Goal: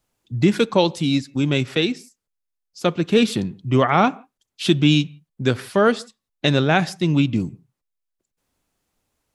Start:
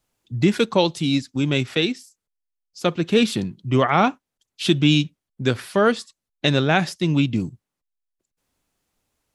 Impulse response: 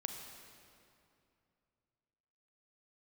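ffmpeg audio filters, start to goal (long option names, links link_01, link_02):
-filter_complex "[0:a]asplit=2[link_01][link_02];[1:a]atrim=start_sample=2205,afade=type=out:start_time=0.22:duration=0.01,atrim=end_sample=10143,lowpass=2100[link_03];[link_02][link_03]afir=irnorm=-1:irlink=0,volume=-13.5dB[link_04];[link_01][link_04]amix=inputs=2:normalize=0"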